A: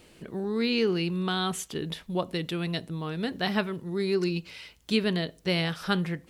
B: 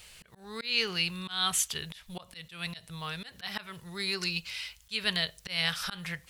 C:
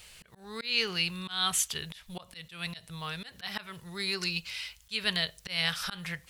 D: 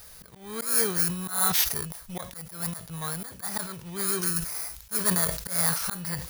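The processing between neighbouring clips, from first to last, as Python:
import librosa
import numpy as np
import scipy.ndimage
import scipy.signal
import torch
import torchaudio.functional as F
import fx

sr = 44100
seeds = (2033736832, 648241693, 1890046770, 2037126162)

y1 = fx.tone_stack(x, sr, knobs='10-0-10')
y1 = fx.auto_swell(y1, sr, attack_ms=200.0)
y1 = F.gain(torch.from_numpy(y1), 9.0).numpy()
y2 = y1
y3 = fx.bit_reversed(y2, sr, seeds[0], block=16)
y3 = fx.sustainer(y3, sr, db_per_s=84.0)
y3 = F.gain(torch.from_numpy(y3), 5.0).numpy()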